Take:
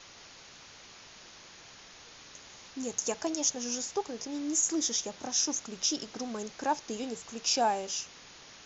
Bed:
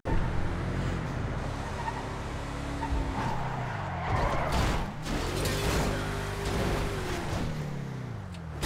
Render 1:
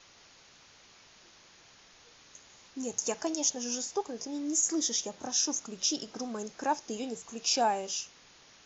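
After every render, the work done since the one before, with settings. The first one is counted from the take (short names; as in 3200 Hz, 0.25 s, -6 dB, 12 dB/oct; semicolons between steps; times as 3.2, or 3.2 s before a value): noise print and reduce 6 dB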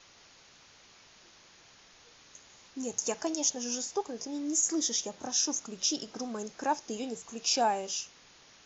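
nothing audible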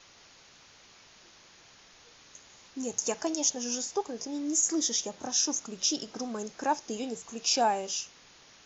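gain +1.5 dB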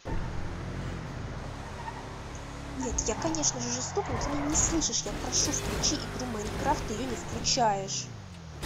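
add bed -5 dB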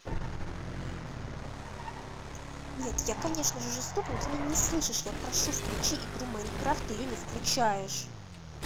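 half-wave gain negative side -7 dB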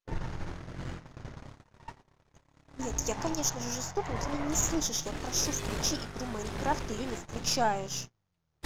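gate -37 dBFS, range -34 dB; high shelf 9900 Hz -3 dB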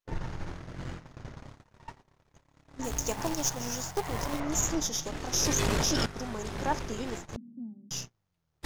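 2.84–4.4 companded quantiser 4-bit; 5.33–6.06 fast leveller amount 100%; 7.36–7.91 Butterworth band-pass 230 Hz, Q 4.8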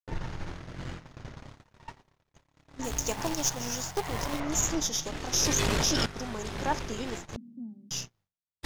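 expander -59 dBFS; bell 3300 Hz +3.5 dB 1.7 oct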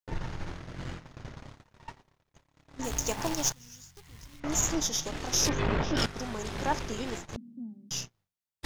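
3.52–4.44 passive tone stack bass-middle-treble 6-0-2; 5.49–5.97 LPF 2100 Hz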